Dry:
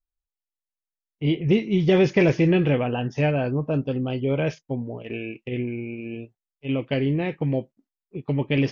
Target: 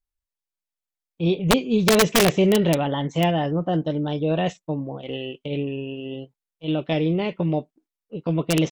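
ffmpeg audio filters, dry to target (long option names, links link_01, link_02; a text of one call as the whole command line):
ffmpeg -i in.wav -af "aeval=exprs='(mod(3.35*val(0)+1,2)-1)/3.35':channel_layout=same,asetrate=50951,aresample=44100,atempo=0.865537,volume=1dB" out.wav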